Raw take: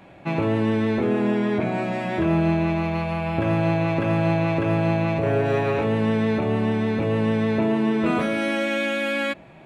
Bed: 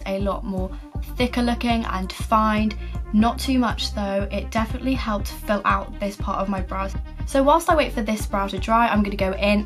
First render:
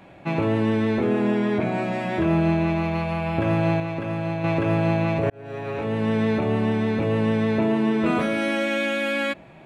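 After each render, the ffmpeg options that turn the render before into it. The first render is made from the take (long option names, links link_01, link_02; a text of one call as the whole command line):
ffmpeg -i in.wav -filter_complex "[0:a]asplit=4[link_01][link_02][link_03][link_04];[link_01]atrim=end=3.802[link_05];[link_02]atrim=start=3.798:end=4.442,asetpts=PTS-STARTPTS,volume=-6dB[link_06];[link_03]atrim=start=4.438:end=5.3,asetpts=PTS-STARTPTS,afade=type=out:start_time=0.858:duration=0.004:curve=hsin[link_07];[link_04]atrim=start=5.3,asetpts=PTS-STARTPTS,afade=type=in:duration=0.91[link_08];[link_05][link_06]acrossfade=duration=0.004:curve1=hsin:curve2=hsin[link_09];[link_07][link_08]concat=n=2:v=0:a=1[link_10];[link_09][link_10]acrossfade=duration=0.004:curve1=hsin:curve2=hsin" out.wav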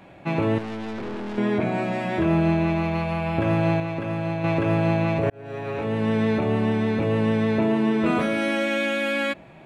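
ffmpeg -i in.wav -filter_complex "[0:a]asettb=1/sr,asplit=3[link_01][link_02][link_03];[link_01]atrim=end=0.584[link_04];[link_02]atrim=start=0.58:end=1.38,asetpts=PTS-STARTPTS,afade=type=in:duration=0.004:curve=qsin,afade=type=out:start_time=0.796:duration=0.004:curve=qsin,aeval=exprs='(tanh(31.6*val(0)+0.55)-tanh(0.55))/31.6':channel_layout=same[link_05];[link_03]atrim=start=1.376[link_06];[link_04][link_05]acrossfade=duration=0.004:curve1=hsin:curve2=qsin[link_07];[link_07][link_06]acrossfade=duration=0.004:curve1=qsin:curve2=hsin" out.wav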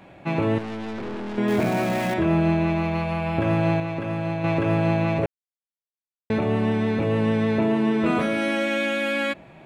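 ffmpeg -i in.wav -filter_complex "[0:a]asettb=1/sr,asplit=3[link_01][link_02][link_03];[link_01]atrim=end=1.484[link_04];[link_02]atrim=start=1.48:end=2.14,asetpts=PTS-STARTPTS,afade=type=in:duration=0.004:curve=qsin,afade=type=out:start_time=0.656:duration=0.004:curve=qsin,aeval=exprs='val(0)+0.5*0.0376*sgn(val(0))':channel_layout=same[link_05];[link_03]atrim=start=2.136[link_06];[link_04][link_05]acrossfade=duration=0.004:curve1=hsin:curve2=qsin[link_07];[link_07][link_06]acrossfade=duration=0.004:curve1=qsin:curve2=hsin,asplit=3[link_08][link_09][link_10];[link_08]atrim=end=5.26,asetpts=PTS-STARTPTS,afade=type=out:start_time=5.256:duration=0.004:curve=hsin[link_11];[link_09]atrim=start=5.26:end=6.3,asetpts=PTS-STARTPTS,volume=0[link_12];[link_10]atrim=start=6.3,asetpts=PTS-STARTPTS,afade=type=in:duration=0.004:curve=hsin[link_13];[link_11][link_12][link_13]concat=n=3:v=0:a=1" out.wav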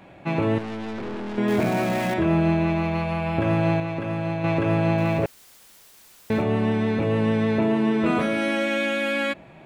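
ffmpeg -i in.wav -filter_complex "[0:a]asettb=1/sr,asplit=3[link_01][link_02][link_03];[link_01]atrim=end=4.984[link_04];[link_02]atrim=start=4.98:end=6.42,asetpts=PTS-STARTPTS,afade=type=in:duration=0.004:curve=qsin,afade=type=out:start_time=1.436:duration=0.004:curve=qsin,aeval=exprs='val(0)+0.5*0.0106*sgn(val(0))':channel_layout=same[link_05];[link_03]atrim=start=6.416[link_06];[link_04][link_05]acrossfade=duration=0.004:curve1=hsin:curve2=qsin[link_07];[link_07][link_06]acrossfade=duration=0.004:curve1=qsin:curve2=hsin" out.wav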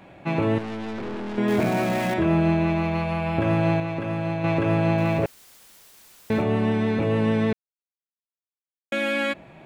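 ffmpeg -i in.wav -filter_complex "[0:a]asplit=3[link_01][link_02][link_03];[link_01]atrim=end=7.53,asetpts=PTS-STARTPTS,afade=type=out:start_time=7.526:duration=0.004:curve=hsin[link_04];[link_02]atrim=start=7.53:end=8.92,asetpts=PTS-STARTPTS,volume=0[link_05];[link_03]atrim=start=8.92,asetpts=PTS-STARTPTS,afade=type=in:duration=0.004:curve=hsin[link_06];[link_04][link_05][link_06]concat=n=3:v=0:a=1" out.wav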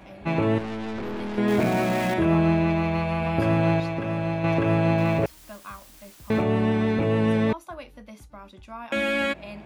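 ffmpeg -i in.wav -i bed.wav -filter_complex "[1:a]volume=-21dB[link_01];[0:a][link_01]amix=inputs=2:normalize=0" out.wav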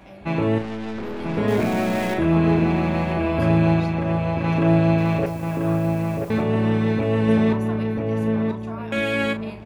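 ffmpeg -i in.wav -filter_complex "[0:a]asplit=2[link_01][link_02];[link_02]adelay=36,volume=-9.5dB[link_03];[link_01][link_03]amix=inputs=2:normalize=0,asplit=2[link_04][link_05];[link_05]adelay=987,lowpass=frequency=1600:poles=1,volume=-3dB,asplit=2[link_06][link_07];[link_07]adelay=987,lowpass=frequency=1600:poles=1,volume=0.4,asplit=2[link_08][link_09];[link_09]adelay=987,lowpass=frequency=1600:poles=1,volume=0.4,asplit=2[link_10][link_11];[link_11]adelay=987,lowpass=frequency=1600:poles=1,volume=0.4,asplit=2[link_12][link_13];[link_13]adelay=987,lowpass=frequency=1600:poles=1,volume=0.4[link_14];[link_04][link_06][link_08][link_10][link_12][link_14]amix=inputs=6:normalize=0" out.wav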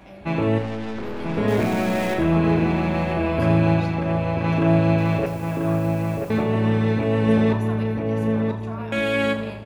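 ffmpeg -i in.wav -af "aecho=1:1:83|166|249|332|415|498:0.251|0.141|0.0788|0.0441|0.0247|0.0138" out.wav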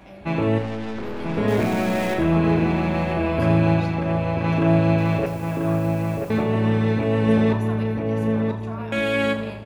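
ffmpeg -i in.wav -af anull out.wav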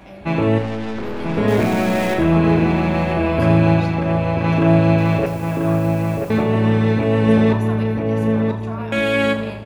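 ffmpeg -i in.wav -af "volume=4dB" out.wav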